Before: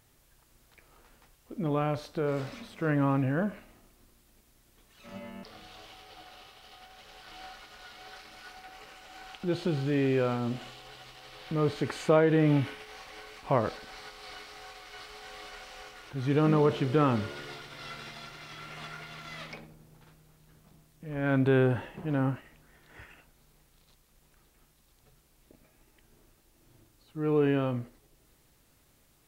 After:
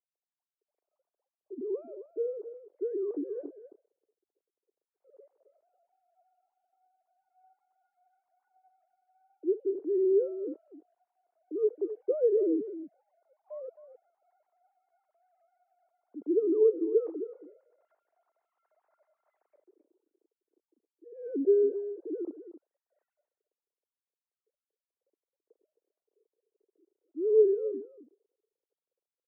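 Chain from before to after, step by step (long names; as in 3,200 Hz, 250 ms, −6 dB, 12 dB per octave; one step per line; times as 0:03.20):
three sine waves on the formant tracks
flat-topped band-pass 370 Hz, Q 2.2
single-tap delay 265 ms −12.5 dB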